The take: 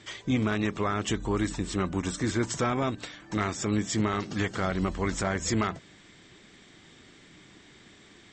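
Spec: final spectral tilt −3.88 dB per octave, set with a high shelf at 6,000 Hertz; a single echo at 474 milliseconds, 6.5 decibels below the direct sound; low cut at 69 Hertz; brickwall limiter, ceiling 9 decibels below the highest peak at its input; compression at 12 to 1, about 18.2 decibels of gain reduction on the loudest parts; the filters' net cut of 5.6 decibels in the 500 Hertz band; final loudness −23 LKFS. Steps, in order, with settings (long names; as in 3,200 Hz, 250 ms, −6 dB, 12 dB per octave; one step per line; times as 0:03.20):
high-pass filter 69 Hz
parametric band 500 Hz −8 dB
high-shelf EQ 6,000 Hz −3.5 dB
downward compressor 12 to 1, threshold −42 dBFS
brickwall limiter −39.5 dBFS
single-tap delay 474 ms −6.5 dB
level +27 dB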